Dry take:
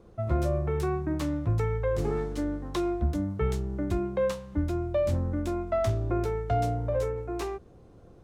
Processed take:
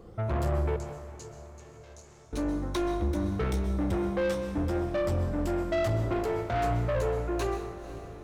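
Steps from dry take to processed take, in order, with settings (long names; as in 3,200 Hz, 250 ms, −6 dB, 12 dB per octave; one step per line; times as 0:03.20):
rippled gain that drifts along the octave scale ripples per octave 1.5, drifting +2.4 Hz, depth 8 dB
soft clipping −30 dBFS, distortion −9 dB
0:00.76–0:02.33: resonant band-pass 6,600 Hz, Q 3.3
feedback delay with all-pass diffusion 514 ms, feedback 58%, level −14.5 dB
dense smooth reverb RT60 0.91 s, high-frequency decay 0.8×, pre-delay 115 ms, DRR 9 dB
level +4 dB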